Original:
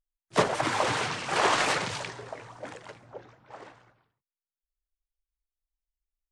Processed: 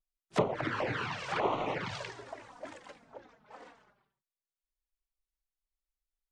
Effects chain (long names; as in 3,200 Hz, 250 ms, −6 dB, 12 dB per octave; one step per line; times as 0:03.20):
flanger swept by the level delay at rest 5.3 ms, full sweep at −21.5 dBFS
treble cut that deepens with the level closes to 1,500 Hz, closed at −25 dBFS
level −2 dB